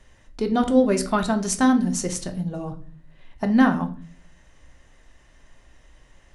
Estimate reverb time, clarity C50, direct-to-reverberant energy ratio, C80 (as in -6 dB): 0.45 s, 13.5 dB, 5.0 dB, 18.0 dB